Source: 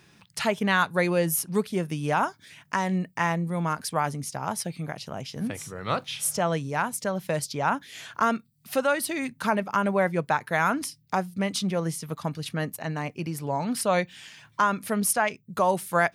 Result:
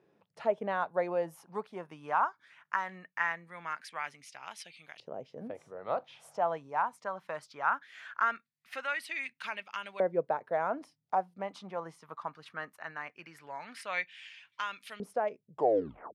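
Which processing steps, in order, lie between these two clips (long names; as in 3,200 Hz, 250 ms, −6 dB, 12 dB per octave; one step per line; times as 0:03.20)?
turntable brake at the end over 0.70 s
auto-filter band-pass saw up 0.2 Hz 470–3,200 Hz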